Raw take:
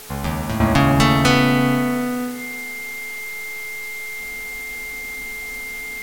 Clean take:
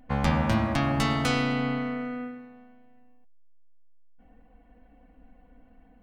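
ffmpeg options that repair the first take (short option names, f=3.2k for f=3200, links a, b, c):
-af "bandreject=f=429.3:t=h:w=4,bandreject=f=858.6:t=h:w=4,bandreject=f=1.2879k:t=h:w=4,bandreject=f=1.7172k:t=h:w=4,bandreject=f=2.1k:w=30,afwtdn=0.013,asetnsamples=n=441:p=0,asendcmd='0.6 volume volume -10.5dB',volume=0dB"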